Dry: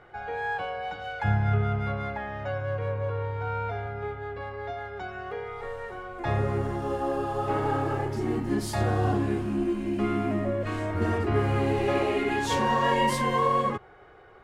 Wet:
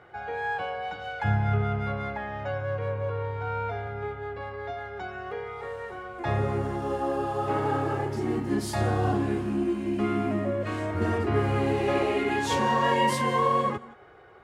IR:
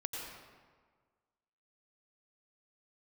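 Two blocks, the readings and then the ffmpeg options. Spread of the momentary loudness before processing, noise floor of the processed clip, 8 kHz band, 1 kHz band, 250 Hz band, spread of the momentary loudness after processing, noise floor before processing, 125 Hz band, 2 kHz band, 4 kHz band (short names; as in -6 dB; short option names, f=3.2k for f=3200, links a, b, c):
12 LU, -46 dBFS, +0.5 dB, +0.5 dB, 0.0 dB, 12 LU, -51 dBFS, -1.0 dB, 0.0 dB, +0.5 dB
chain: -filter_complex "[0:a]highpass=63,asplit=2[a][b];[1:a]atrim=start_sample=2205,afade=t=out:st=0.14:d=0.01,atrim=end_sample=6615,asetrate=22932,aresample=44100[c];[b][c]afir=irnorm=-1:irlink=0,volume=-9.5dB[d];[a][d]amix=inputs=2:normalize=0,volume=-2.5dB"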